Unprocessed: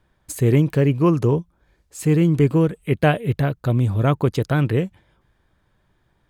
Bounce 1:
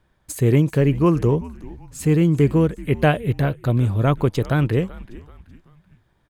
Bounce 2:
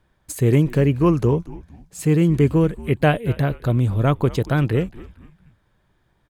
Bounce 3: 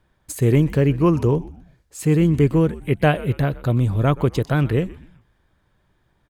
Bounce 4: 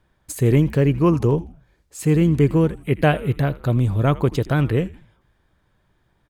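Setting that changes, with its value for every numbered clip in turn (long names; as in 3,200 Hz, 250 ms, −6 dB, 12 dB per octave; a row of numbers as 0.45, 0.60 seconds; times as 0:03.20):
echo with shifted repeats, delay time: 382, 230, 125, 81 milliseconds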